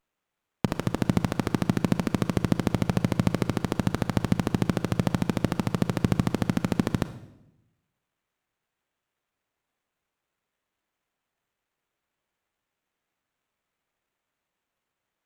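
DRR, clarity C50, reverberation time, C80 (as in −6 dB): 12.0 dB, 14.0 dB, 0.85 s, 16.5 dB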